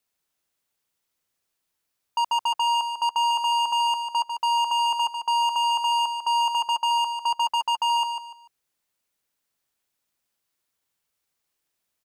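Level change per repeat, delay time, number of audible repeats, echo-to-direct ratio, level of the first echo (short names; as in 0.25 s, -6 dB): -11.0 dB, 0.147 s, 3, -6.5 dB, -7.0 dB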